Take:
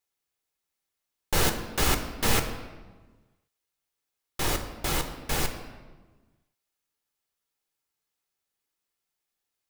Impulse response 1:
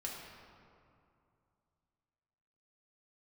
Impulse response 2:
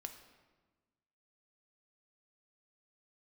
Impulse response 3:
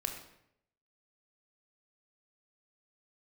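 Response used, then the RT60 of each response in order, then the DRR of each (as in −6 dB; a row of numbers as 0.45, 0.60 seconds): 2; 2.5, 1.3, 0.75 seconds; −4.0, 5.5, 3.5 decibels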